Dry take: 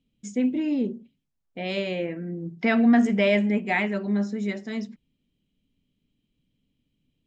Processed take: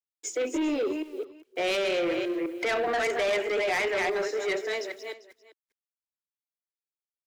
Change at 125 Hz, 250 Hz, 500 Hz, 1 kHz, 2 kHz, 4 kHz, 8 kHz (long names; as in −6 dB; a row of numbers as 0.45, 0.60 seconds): below −15 dB, −10.5 dB, +1.5 dB, +1.0 dB, 0.0 dB, +3.0 dB, can't be measured